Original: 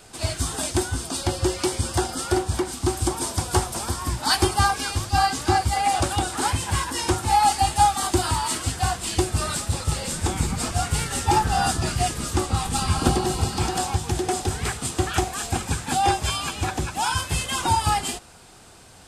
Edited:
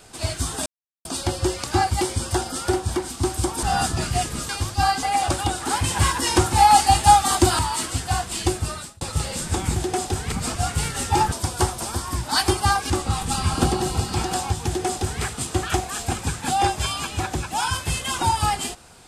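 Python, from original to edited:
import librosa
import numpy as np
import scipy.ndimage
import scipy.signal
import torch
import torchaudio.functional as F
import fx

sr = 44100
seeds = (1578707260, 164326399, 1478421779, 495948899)

y = fx.edit(x, sr, fx.silence(start_s=0.66, length_s=0.39),
    fx.swap(start_s=3.26, length_s=1.58, other_s=11.48, other_length_s=0.86),
    fx.move(start_s=5.38, length_s=0.37, to_s=1.64),
    fx.clip_gain(start_s=6.56, length_s=1.75, db=4.5),
    fx.fade_out_span(start_s=9.25, length_s=0.48),
    fx.duplicate(start_s=14.11, length_s=0.56, to_s=10.48), tone=tone)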